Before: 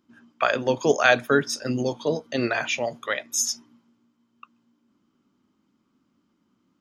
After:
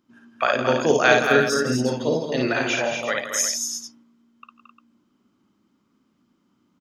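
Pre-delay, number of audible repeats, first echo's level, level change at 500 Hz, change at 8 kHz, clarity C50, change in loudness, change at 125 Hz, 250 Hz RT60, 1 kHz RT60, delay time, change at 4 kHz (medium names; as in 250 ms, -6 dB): no reverb, 5, -3.5 dB, +3.0 dB, +3.0 dB, no reverb, +3.0 dB, +3.5 dB, no reverb, no reverb, 55 ms, +3.0 dB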